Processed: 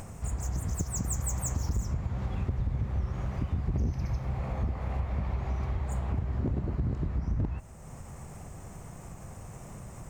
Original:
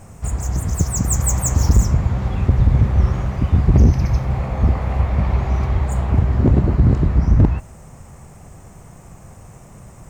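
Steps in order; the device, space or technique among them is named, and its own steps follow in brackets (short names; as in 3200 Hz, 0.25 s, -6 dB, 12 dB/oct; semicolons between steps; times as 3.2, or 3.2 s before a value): upward and downward compression (upward compressor, threshold -28 dBFS; compressor 4:1, threshold -20 dBFS, peak gain reduction 10 dB); gain -8 dB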